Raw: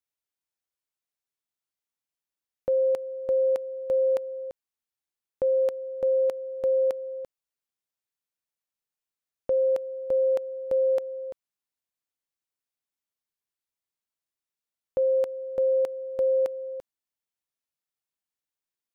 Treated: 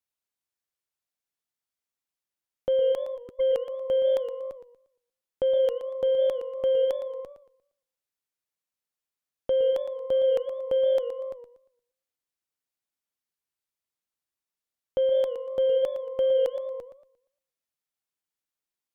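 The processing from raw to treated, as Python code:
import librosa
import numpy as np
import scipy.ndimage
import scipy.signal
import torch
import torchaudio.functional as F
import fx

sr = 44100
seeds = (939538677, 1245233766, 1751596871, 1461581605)

y = fx.spec_erase(x, sr, start_s=3.17, length_s=0.23, low_hz=430.0, high_hz=1200.0)
y = fx.cheby_harmonics(y, sr, harmonics=(3, 6), levels_db=(-39, -25), full_scale_db=-19.0)
y = fx.echo_warbled(y, sr, ms=117, feedback_pct=31, rate_hz=2.8, cents=160, wet_db=-11.0)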